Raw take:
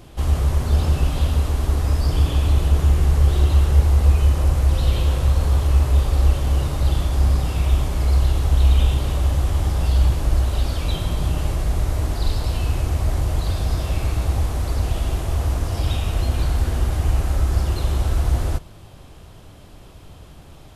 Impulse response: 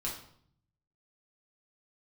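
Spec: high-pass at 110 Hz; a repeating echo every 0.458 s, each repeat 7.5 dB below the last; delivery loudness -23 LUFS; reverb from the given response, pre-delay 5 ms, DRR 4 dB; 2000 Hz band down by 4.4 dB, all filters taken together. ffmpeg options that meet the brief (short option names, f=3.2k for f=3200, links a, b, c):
-filter_complex "[0:a]highpass=110,equalizer=f=2k:t=o:g=-6,aecho=1:1:458|916|1374|1832|2290:0.422|0.177|0.0744|0.0312|0.0131,asplit=2[a][b];[1:a]atrim=start_sample=2205,adelay=5[c];[b][c]afir=irnorm=-1:irlink=0,volume=-6.5dB[d];[a][d]amix=inputs=2:normalize=0,volume=2dB"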